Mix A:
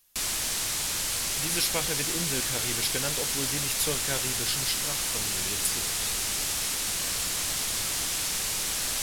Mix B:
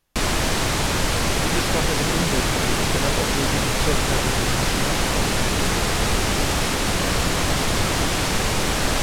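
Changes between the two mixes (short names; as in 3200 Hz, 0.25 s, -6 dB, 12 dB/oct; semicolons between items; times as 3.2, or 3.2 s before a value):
speech -11.5 dB; master: remove pre-emphasis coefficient 0.9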